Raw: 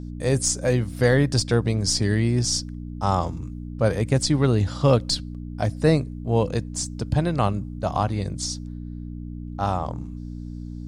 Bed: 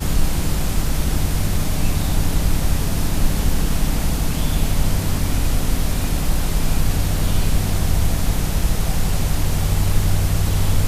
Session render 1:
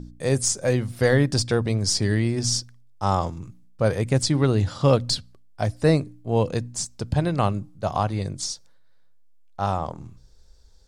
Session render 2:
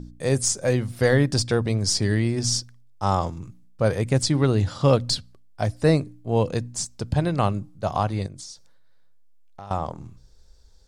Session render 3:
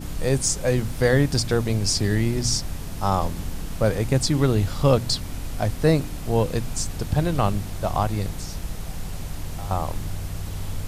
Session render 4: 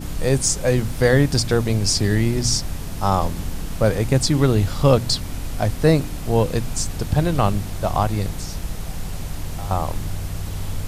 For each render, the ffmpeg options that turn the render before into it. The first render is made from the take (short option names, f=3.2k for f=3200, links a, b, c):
-af "bandreject=f=60:t=h:w=4,bandreject=f=120:t=h:w=4,bandreject=f=180:t=h:w=4,bandreject=f=240:t=h:w=4,bandreject=f=300:t=h:w=4"
-filter_complex "[0:a]asettb=1/sr,asplit=3[a][b][c];[a]atrim=end=8.264[d];[b]atrim=start=8.26:end=9.71,asetpts=PTS-STARTPTS,afade=t=in:d=0.004:c=qsin,afade=t=out:st=1.446:d=0.004:c=qsin,acompressor=threshold=-37dB:ratio=5:attack=3.2:release=140:knee=1:detection=peak[e];[c]atrim=start=9.706[f];[d][e]acrossfade=d=0.004:c1=hsin:c2=qsin[g];[g][f]acrossfade=d=0.004:c1=qsin:c2=hsin"
-filter_complex "[1:a]volume=-12.5dB[a];[0:a][a]amix=inputs=2:normalize=0"
-af "volume=3dB"